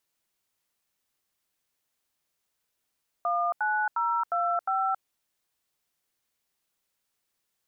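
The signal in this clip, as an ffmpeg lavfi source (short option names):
-f lavfi -i "aevalsrc='0.0473*clip(min(mod(t,0.356),0.273-mod(t,0.356))/0.002,0,1)*(eq(floor(t/0.356),0)*(sin(2*PI*697*mod(t,0.356))+sin(2*PI*1209*mod(t,0.356)))+eq(floor(t/0.356),1)*(sin(2*PI*852*mod(t,0.356))+sin(2*PI*1477*mod(t,0.356)))+eq(floor(t/0.356),2)*(sin(2*PI*941*mod(t,0.356))+sin(2*PI*1336*mod(t,0.356)))+eq(floor(t/0.356),3)*(sin(2*PI*697*mod(t,0.356))+sin(2*PI*1336*mod(t,0.356)))+eq(floor(t/0.356),4)*(sin(2*PI*770*mod(t,0.356))+sin(2*PI*1336*mod(t,0.356))))':d=1.78:s=44100"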